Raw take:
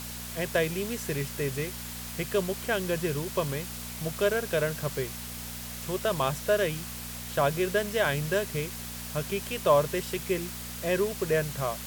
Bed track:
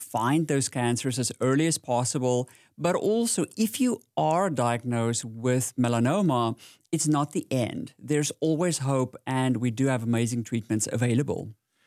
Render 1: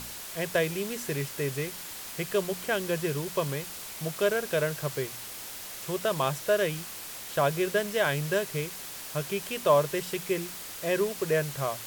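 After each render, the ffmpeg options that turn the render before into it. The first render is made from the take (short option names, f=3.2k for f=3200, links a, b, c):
-af "bandreject=f=60:t=h:w=4,bandreject=f=120:t=h:w=4,bandreject=f=180:t=h:w=4,bandreject=f=240:t=h:w=4"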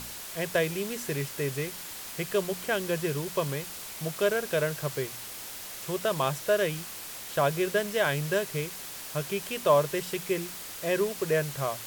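-af anull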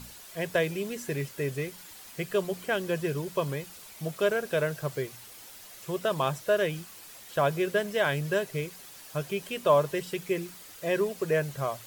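-af "afftdn=nr=9:nf=-41"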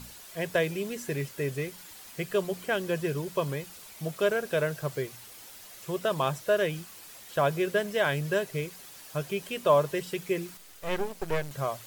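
-filter_complex "[0:a]asettb=1/sr,asplit=3[a][b][c];[a]atrim=end=10.574[d];[b]atrim=start=10.57:end=11.51,asetpts=PTS-STARTPTS,afade=t=in:d=0.004:c=qsin,afade=t=out:st=0.936:d=0.004:c=qsin,aeval=exprs='max(val(0),0)':c=same[e];[c]atrim=start=11.506[f];[d][e]acrossfade=d=0.004:c1=hsin:c2=qsin[g];[g][f]acrossfade=d=0.004:c1=qsin:c2=hsin"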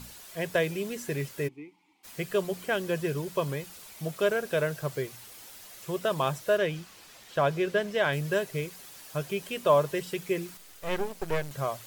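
-filter_complex "[0:a]asplit=3[a][b][c];[a]afade=t=out:st=1.47:d=0.02[d];[b]asplit=3[e][f][g];[e]bandpass=f=300:t=q:w=8,volume=0dB[h];[f]bandpass=f=870:t=q:w=8,volume=-6dB[i];[g]bandpass=f=2.24k:t=q:w=8,volume=-9dB[j];[h][i][j]amix=inputs=3:normalize=0,afade=t=in:st=1.47:d=0.02,afade=t=out:st=2.03:d=0.02[k];[c]afade=t=in:st=2.03:d=0.02[l];[d][k][l]amix=inputs=3:normalize=0,asettb=1/sr,asplit=3[m][n][o];[m]atrim=end=6.574[p];[n]atrim=start=6.57:end=8.13,asetpts=PTS-STARTPTS,afade=t=in:d=0.004:c=qsin,afade=t=out:st=1.556:d=0.004:c=qsin,acrossover=split=6600[q][r];[r]acompressor=threshold=-56dB:ratio=4:attack=1:release=60[s];[q][s]amix=inputs=2:normalize=0[t];[o]atrim=start=8.126[u];[p][t]acrossfade=d=0.004:c1=hsin:c2=qsin[v];[v][u]acrossfade=d=0.004:c1=qsin:c2=hsin"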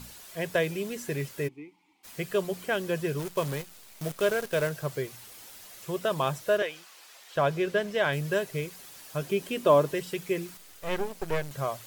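-filter_complex "[0:a]asettb=1/sr,asplit=3[a][b][c];[a]atrim=end=3.194[d];[b]atrim=start=3.19:end=4.69,asetpts=PTS-STARTPTS,afade=t=in:d=0.004:c=qsin,afade=t=out:st=1.496:d=0.004:c=qsin,acrusher=bits=7:dc=4:mix=0:aa=0.000001[e];[c]atrim=start=4.686[f];[d][e]acrossfade=d=0.004:c1=hsin:c2=qsin[g];[g][f]acrossfade=d=0.004:c1=qsin:c2=hsin,asettb=1/sr,asplit=3[h][i][j];[h]atrim=end=6.624[k];[i]atrim=start=6.62:end=7.35,asetpts=PTS-STARTPTS,afade=t=in:d=0.004:c=qsin,afade=t=out:st=0.726:d=0.004:c=qsin,highpass=570[l];[j]atrim=start=7.346[m];[k][l]acrossfade=d=0.004:c1=hsin:c2=qsin[n];[n][m]acrossfade=d=0.004:c1=qsin:c2=hsin,asettb=1/sr,asplit=3[o][p][q];[o]atrim=end=9.224[r];[p]atrim=start=9.22:end=9.94,asetpts=PTS-STARTPTS,afade=t=in:d=0.004:c=qsin,afade=t=out:st=0.716:d=0.004:c=qsin,equalizer=f=300:w=1.5:g=8.5[s];[q]atrim=start=9.936[t];[r][s]acrossfade=d=0.004:c1=hsin:c2=qsin[u];[u][t]acrossfade=d=0.004:c1=qsin:c2=hsin"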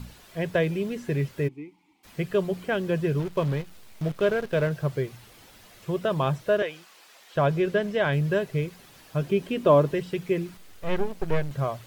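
-filter_complex "[0:a]acrossover=split=4400[a][b];[b]acompressor=threshold=-55dB:ratio=4:attack=1:release=60[c];[a][c]amix=inputs=2:normalize=0,lowshelf=f=300:g=9.5"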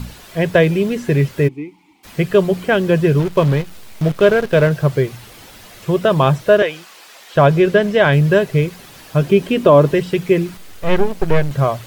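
-af "alimiter=level_in=11.5dB:limit=-1dB:release=50:level=0:latency=1"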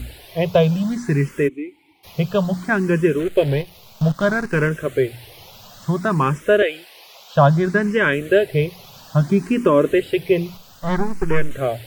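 -filter_complex "[0:a]asplit=2[a][b];[b]afreqshift=0.6[c];[a][c]amix=inputs=2:normalize=1"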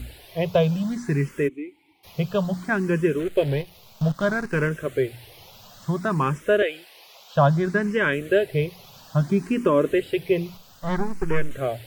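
-af "volume=-4.5dB"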